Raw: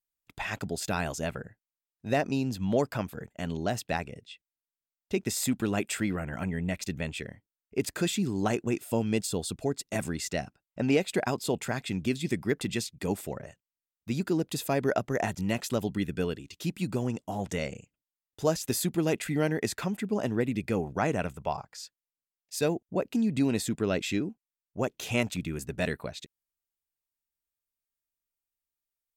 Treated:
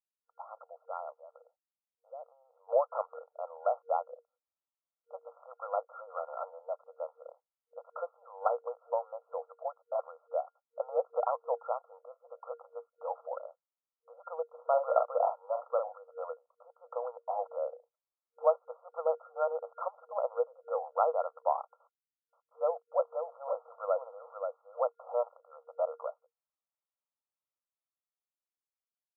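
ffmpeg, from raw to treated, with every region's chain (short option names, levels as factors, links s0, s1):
-filter_complex "[0:a]asettb=1/sr,asplit=3[s0][s1][s2];[s0]atrim=end=1.104[s3];[s1]atrim=start=1.1:end=2.69,asetpts=PTS-STARTPTS,afade=t=in:d=0.004:c=qsin,afade=t=out:st=1.586:d=0.004:c=qsin,lowpass=1000,acompressor=threshold=0.00794:ratio=4:attack=3.2:release=140:knee=1:detection=peak[s4];[s2]atrim=start=2.686[s5];[s3][s4]acrossfade=d=0.004:c1=hsin:c2=qsin[s6];[s6][s5]acrossfade=d=0.004:c1=qsin:c2=hsin,asettb=1/sr,asplit=3[s7][s8][s9];[s7]atrim=end=14.434[s10];[s8]atrim=start=14.43:end=15.95,asetpts=PTS-STARTPTS,afade=t=in:d=0.004:c=qsin,afade=t=out:st=1.516:d=0.004:c=qsin,agate=range=0.398:threshold=0.00501:ratio=16:release=100:detection=peak,asplit=2[s11][s12];[s12]adelay=44,volume=0.501[s13];[s11][s13]amix=inputs=2:normalize=0,atrim=end_sample=67032[s14];[s9]atrim=start=15.946[s15];[s10][s14]acrossfade=d=0.004:c1=hsin:c2=qsin[s16];[s16][s15]acrossfade=d=0.004:c1=qsin:c2=hsin,asettb=1/sr,asplit=3[s17][s18][s19];[s17]atrim=end=21.804[s20];[s18]atrim=start=21.8:end=25.3,asetpts=PTS-STARTPTS,afade=t=in:d=0.004:c=qsin,afade=t=out:st=3.496:d=0.004:c=qsin,acrusher=bits=9:dc=4:mix=0:aa=0.000001,aecho=1:1:529:0.501,atrim=end_sample=154350[s21];[s19]atrim=start=25.296[s22];[s20][s21]acrossfade=d=0.004:c1=hsin:c2=qsin[s23];[s23][s22]acrossfade=d=0.004:c1=qsin:c2=hsin,dynaudnorm=f=230:g=17:m=2.99,afftfilt=real='re*between(b*sr/4096,470,1400)':imag='im*between(b*sr/4096,470,1400)':win_size=4096:overlap=0.75,volume=0.473"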